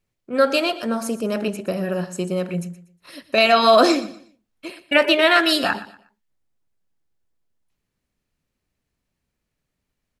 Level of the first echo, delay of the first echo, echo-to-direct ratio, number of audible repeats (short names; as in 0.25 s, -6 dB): -16.0 dB, 0.12 s, -15.5 dB, 2